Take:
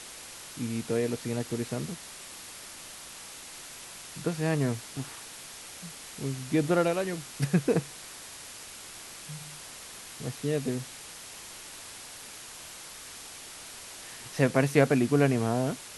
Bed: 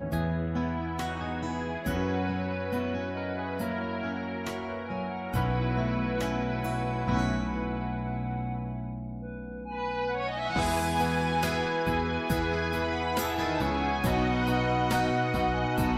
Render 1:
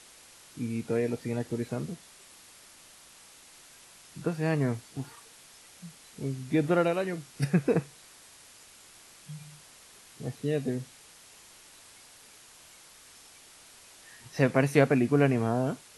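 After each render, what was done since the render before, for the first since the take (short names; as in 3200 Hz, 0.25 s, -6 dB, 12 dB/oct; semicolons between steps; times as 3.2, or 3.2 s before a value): noise print and reduce 9 dB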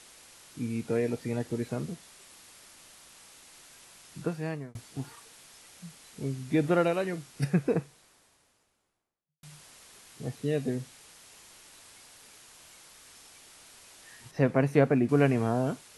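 4.2–4.75 fade out; 7.04–9.43 studio fade out; 14.31–15.09 high shelf 2100 Hz -10.5 dB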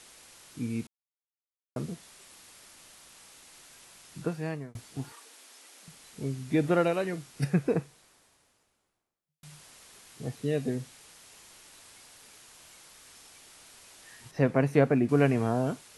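0.87–1.76 mute; 5.12–5.88 steep high-pass 230 Hz 72 dB/oct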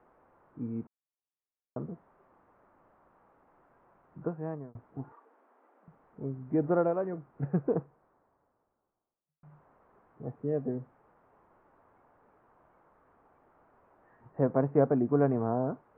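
inverse Chebyshev low-pass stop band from 5100 Hz, stop band 70 dB; low shelf 230 Hz -6 dB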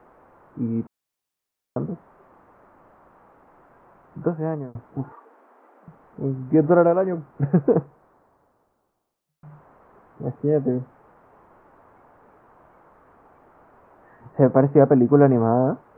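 gain +11 dB; limiter -3 dBFS, peak gain reduction 2 dB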